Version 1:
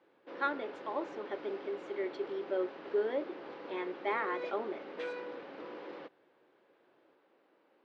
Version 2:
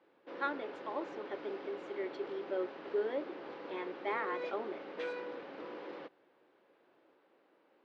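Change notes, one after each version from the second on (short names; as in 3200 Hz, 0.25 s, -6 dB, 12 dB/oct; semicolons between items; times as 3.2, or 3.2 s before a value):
reverb: off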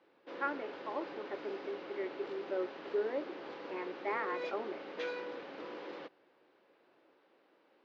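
speech: add brick-wall FIR low-pass 2900 Hz; background: add high shelf 3500 Hz +8 dB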